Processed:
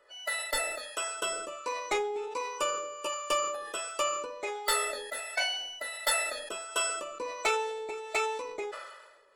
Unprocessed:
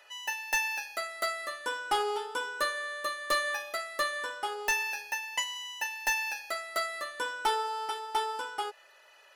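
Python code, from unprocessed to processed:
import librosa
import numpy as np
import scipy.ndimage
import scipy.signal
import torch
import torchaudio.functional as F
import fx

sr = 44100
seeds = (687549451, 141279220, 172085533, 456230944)

y = fx.formant_shift(x, sr, semitones=-5)
y = fx.harmonic_tremolo(y, sr, hz=1.4, depth_pct=70, crossover_hz=530.0)
y = fx.sustainer(y, sr, db_per_s=47.0)
y = y * librosa.db_to_amplitude(1.5)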